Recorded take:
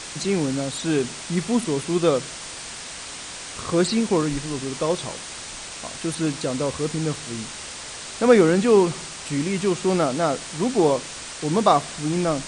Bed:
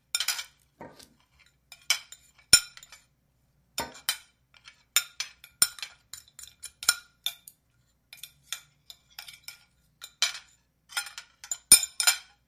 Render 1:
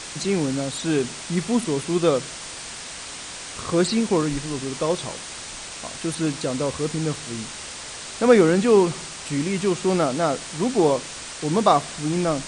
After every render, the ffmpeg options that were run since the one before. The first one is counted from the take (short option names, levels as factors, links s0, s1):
-af anull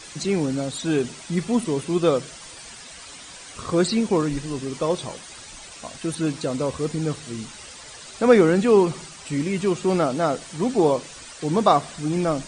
-af "afftdn=nr=10:nf=-36"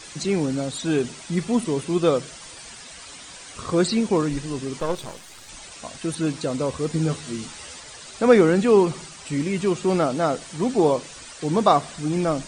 -filter_complex "[0:a]asettb=1/sr,asplit=3[s0][s1][s2];[s0]atrim=end=4.804[s3];[s1]atrim=start=4.8:end=5.49,asetpts=PTS-STARTPTS,afade=t=in:d=0.004:c=qsin,afade=t=out:st=0.686:d=0.004:c=qsin,aeval=exprs='if(lt(val(0),0),0.251*val(0),val(0))':c=same[s4];[s2]atrim=start=5.486[s5];[s3][s4]acrossfade=d=0.004:c1=hsin:c2=qsin[s6];[s6][s5]acrossfade=d=0.004:c1=qsin:c2=hsin,asettb=1/sr,asplit=3[s7][s8][s9];[s7]atrim=end=6.924[s10];[s8]atrim=start=6.92:end=7.8,asetpts=PTS-STARTPTS,afade=t=in:d=0.004:c=qsin,afade=t=out:st=0.876:d=0.004:c=qsin,asplit=2[s11][s12];[s12]adelay=12,volume=0.708[s13];[s11][s13]amix=inputs=2:normalize=0,atrim=end_sample=38808[s14];[s9]atrim=start=7.796[s15];[s10][s14]acrossfade=d=0.004:c1=hsin:c2=qsin[s16];[s16][s15]acrossfade=d=0.004:c1=qsin:c2=hsin"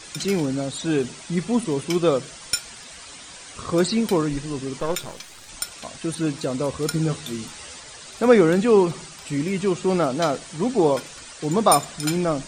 -filter_complex "[1:a]volume=0.447[s0];[0:a][s0]amix=inputs=2:normalize=0"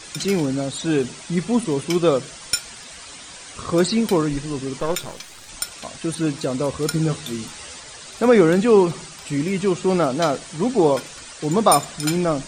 -af "volume=1.26,alimiter=limit=0.708:level=0:latency=1"